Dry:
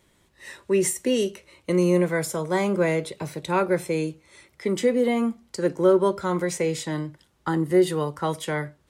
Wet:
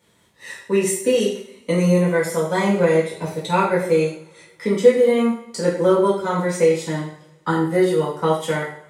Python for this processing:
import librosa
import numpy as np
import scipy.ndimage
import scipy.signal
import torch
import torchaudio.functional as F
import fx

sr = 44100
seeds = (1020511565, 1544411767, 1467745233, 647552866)

y = fx.transient(x, sr, attack_db=3, sustain_db=-6)
y = scipy.signal.sosfilt(scipy.signal.butter(2, 94.0, 'highpass', fs=sr, output='sos'), y)
y = fx.peak_eq(y, sr, hz=290.0, db=-6.5, octaves=0.36)
y = fx.rev_double_slope(y, sr, seeds[0], early_s=0.54, late_s=2.0, knee_db=-25, drr_db=-7.5)
y = y * librosa.db_to_amplitude(-3.5)